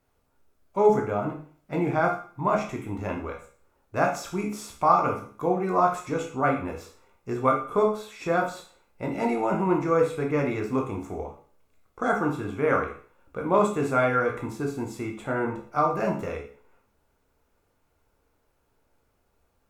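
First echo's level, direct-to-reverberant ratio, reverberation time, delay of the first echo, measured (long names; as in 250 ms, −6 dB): no echo audible, 0.0 dB, 0.45 s, no echo audible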